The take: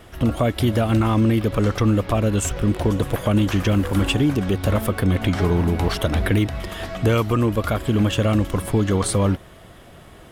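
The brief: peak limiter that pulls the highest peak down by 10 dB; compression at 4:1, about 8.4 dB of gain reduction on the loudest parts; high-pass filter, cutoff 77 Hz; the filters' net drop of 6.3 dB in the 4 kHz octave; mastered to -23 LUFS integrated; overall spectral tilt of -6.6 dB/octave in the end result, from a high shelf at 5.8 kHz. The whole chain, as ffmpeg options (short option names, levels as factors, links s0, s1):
-af "highpass=77,equalizer=f=4000:t=o:g=-6.5,highshelf=f=5800:g=-7.5,acompressor=threshold=0.0562:ratio=4,volume=2.82,alimiter=limit=0.224:level=0:latency=1"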